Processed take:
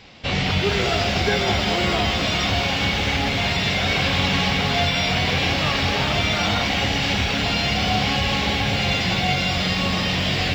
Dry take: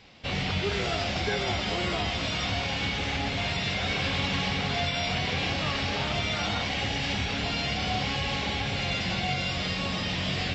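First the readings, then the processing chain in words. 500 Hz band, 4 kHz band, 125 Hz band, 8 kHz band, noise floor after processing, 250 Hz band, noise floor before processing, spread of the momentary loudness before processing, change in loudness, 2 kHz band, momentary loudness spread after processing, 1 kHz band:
+8.0 dB, +8.0 dB, +7.5 dB, n/a, -23 dBFS, +8.5 dB, -31 dBFS, 2 LU, +8.0 dB, +8.0 dB, 1 LU, +8.0 dB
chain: lo-fi delay 0.207 s, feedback 80%, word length 8-bit, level -12.5 dB; gain +7.5 dB

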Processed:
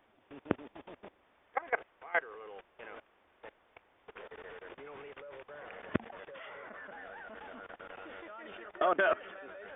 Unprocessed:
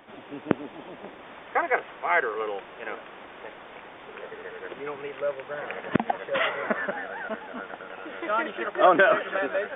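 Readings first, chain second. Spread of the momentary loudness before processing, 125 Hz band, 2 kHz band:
21 LU, -8.5 dB, -10.5 dB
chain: level quantiser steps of 21 dB; resonant low shelf 110 Hz +7 dB, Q 1.5; gain -5.5 dB

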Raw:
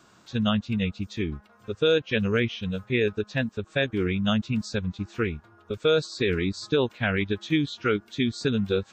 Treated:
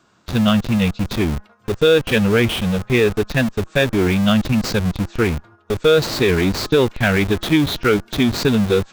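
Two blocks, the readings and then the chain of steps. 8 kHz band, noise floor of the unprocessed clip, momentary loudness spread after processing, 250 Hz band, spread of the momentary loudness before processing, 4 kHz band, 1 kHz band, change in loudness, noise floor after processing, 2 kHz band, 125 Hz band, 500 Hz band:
+14.0 dB, -58 dBFS, 6 LU, +9.0 dB, 8 LU, +8.0 dB, +10.0 dB, +9.0 dB, -55 dBFS, +8.0 dB, +9.5 dB, +8.5 dB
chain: gate -52 dBFS, range -7 dB; high shelf 7000 Hz -5.5 dB; in parallel at -5.5 dB: Schmitt trigger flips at -39 dBFS; on the sum: gain +6.5 dB

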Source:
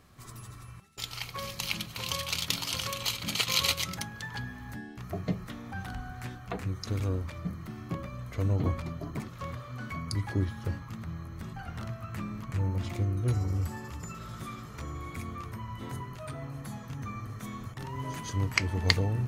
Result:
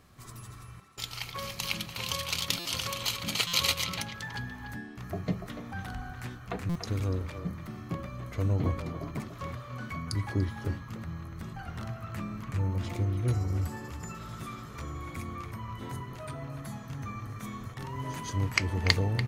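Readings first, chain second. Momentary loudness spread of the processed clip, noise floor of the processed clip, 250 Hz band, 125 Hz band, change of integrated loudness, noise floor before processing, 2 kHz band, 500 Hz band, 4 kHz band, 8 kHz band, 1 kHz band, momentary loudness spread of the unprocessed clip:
12 LU, -46 dBFS, +0.5 dB, 0.0 dB, 0.0 dB, -46 dBFS, +0.5 dB, +0.5 dB, 0.0 dB, 0.0 dB, +0.5 dB, 12 LU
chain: speakerphone echo 0.29 s, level -8 dB; stuck buffer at 2.59/3.47/6.69, samples 256, times 10

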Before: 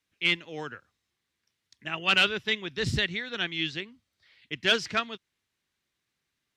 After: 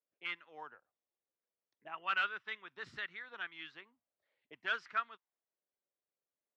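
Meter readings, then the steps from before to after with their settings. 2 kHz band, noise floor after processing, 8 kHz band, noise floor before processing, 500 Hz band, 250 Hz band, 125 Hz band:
-10.5 dB, under -85 dBFS, under -25 dB, -82 dBFS, -19.5 dB, -25.5 dB, -31.5 dB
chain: auto-wah 560–1300 Hz, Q 3, up, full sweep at -27 dBFS; gain -3.5 dB

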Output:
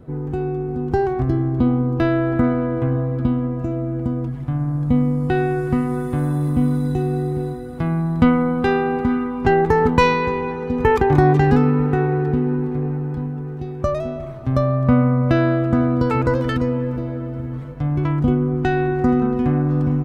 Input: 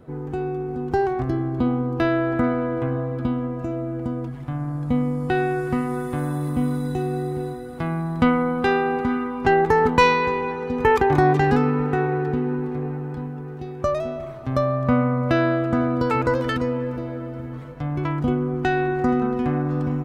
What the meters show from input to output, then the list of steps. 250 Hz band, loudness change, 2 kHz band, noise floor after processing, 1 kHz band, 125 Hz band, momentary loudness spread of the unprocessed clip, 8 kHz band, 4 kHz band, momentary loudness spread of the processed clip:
+4.0 dB, +3.0 dB, -0.5 dB, -29 dBFS, 0.0 dB, +6.5 dB, 12 LU, n/a, -1.0 dB, 9 LU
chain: low shelf 290 Hz +9 dB; gain -1 dB

